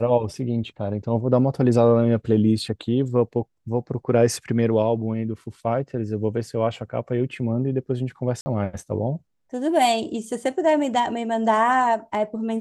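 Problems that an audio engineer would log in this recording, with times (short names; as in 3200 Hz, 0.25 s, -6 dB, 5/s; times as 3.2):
8.41–8.46 gap 50 ms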